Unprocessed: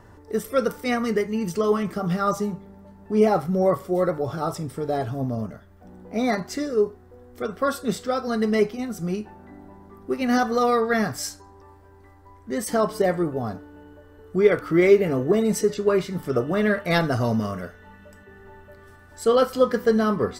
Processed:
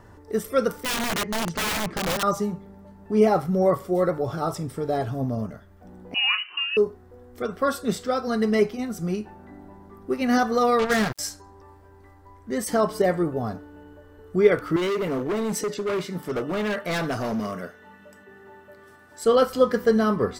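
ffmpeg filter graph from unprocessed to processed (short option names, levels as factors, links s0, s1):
-filter_complex "[0:a]asettb=1/sr,asplit=3[s0][s1][s2];[s0]atrim=end=0.834[s3];[s1]atrim=start=0.83:end=2.23,asetpts=PTS-STARTPTS,afade=t=in:d=0.004:c=qsin,afade=t=out:st=1.396:d=0.004:c=qsin,lowpass=4300,aeval=exprs='(mod(11.2*val(0)+1,2)-1)/11.2':c=same[s4];[s2]atrim=start=2.226[s5];[s3][s4]acrossfade=d=0.004:c1=hsin:c2=qsin[s6];[s6][s5]acrossfade=d=0.004:c1=qsin:c2=hsin,asettb=1/sr,asplit=3[s7][s8][s9];[s7]atrim=end=6.144[s10];[s8]atrim=start=6.14:end=6.77,asetpts=PTS-STARTPTS,afade=t=in:d=0.004:c=qsin,afade=t=out:st=0.626:d=0.004:c=qsin,lowpass=f=2600:t=q:w=0.5098,lowpass=f=2600:t=q:w=0.6013,lowpass=f=2600:t=q:w=0.9,lowpass=f=2600:t=q:w=2.563,afreqshift=-3100,lowshelf=f=420:g=-10.5[s11];[s9]atrim=start=6.766[s12];[s10][s11]acrossfade=d=0.004:c1=hsin:c2=qsin[s13];[s13][s12]acrossfade=d=0.004:c1=qsin:c2=hsin,asettb=1/sr,asplit=3[s14][s15][s16];[s14]atrim=end=10.794[s17];[s15]atrim=start=10.79:end=11.19,asetpts=PTS-STARTPTS,afade=t=in:d=0.004:c=qsin,afade=t=out:st=0.396:d=0.004:c=qsin,bandreject=f=620:w=18,asubboost=boost=11.5:cutoff=180,acrusher=bits=3:mix=0:aa=0.5[s18];[s16]atrim=start=11.186[s19];[s17][s18]acrossfade=d=0.004:c1=hsin:c2=qsin[s20];[s20][s19]acrossfade=d=0.004:c1=qsin:c2=hsin,asettb=1/sr,asplit=3[s21][s22][s23];[s21]atrim=end=14.764[s24];[s22]atrim=start=14.76:end=19.25,asetpts=PTS-STARTPTS,afade=t=in:d=0.004:c=qsin,afade=t=out:st=4.486:d=0.004:c=qsin,highpass=170,asoftclip=type=hard:threshold=0.0708[s25];[s23]atrim=start=19.246[s26];[s24][s25]acrossfade=d=0.004:c1=hsin:c2=qsin[s27];[s27][s26]acrossfade=d=0.004:c1=qsin:c2=hsin"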